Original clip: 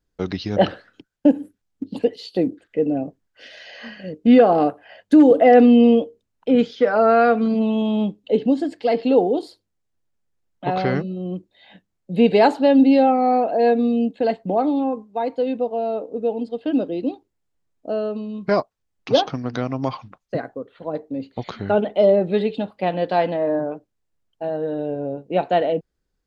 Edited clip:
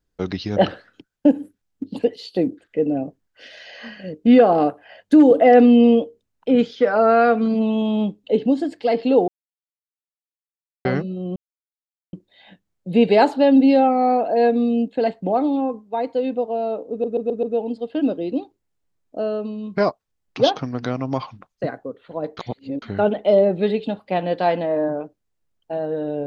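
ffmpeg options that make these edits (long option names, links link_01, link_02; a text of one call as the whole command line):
ffmpeg -i in.wav -filter_complex "[0:a]asplit=10[link_01][link_02][link_03][link_04][link_05][link_06][link_07][link_08][link_09][link_10];[link_01]atrim=end=9.28,asetpts=PTS-STARTPTS,afade=type=out:start_time=9.276:duration=0.004:curve=hsin[link_11];[link_02]atrim=start=9.28:end=10.85,asetpts=PTS-STARTPTS,volume=0[link_12];[link_03]atrim=start=10.85:end=11.36,asetpts=PTS-STARTPTS,afade=type=in:duration=0.004:curve=hsin,afade=type=out:start_time=0.506:duration=0.004:curve=hsin,apad=pad_dur=0.77[link_13];[link_04]atrim=start=11.36:end=16.272,asetpts=PTS-STARTPTS,afade=type=in:duration=0.004:curve=hsin[link_14];[link_05]atrim=start=16.138:end=16.272[link_15];[link_06]atrim=start=16.138:end=16.272[link_16];[link_07]atrim=start=16.138:end=16.272[link_17];[link_08]atrim=start=16.138:end=21.082[link_18];[link_09]atrim=start=21.078:end=21.532,asetpts=PTS-STARTPTS,areverse[link_19];[link_10]atrim=start=21.528[link_20];[link_11][link_12][link_13][link_14]concat=n=4:v=0:a=1[link_21];[link_21][link_15]acrossfade=duration=0.004:curve1=hsin:curve2=hsin[link_22];[link_22][link_16]acrossfade=duration=0.004:curve1=hsin:curve2=hsin[link_23];[link_23][link_17]acrossfade=duration=0.004:curve1=hsin:curve2=hsin[link_24];[link_24][link_18]acrossfade=duration=0.004:curve1=hsin:curve2=hsin[link_25];[link_25][link_19]acrossfade=duration=0.004:curve1=hsin:curve2=hsin[link_26];[link_26][link_20]acrossfade=duration=0.004:curve1=hsin:curve2=hsin" out.wav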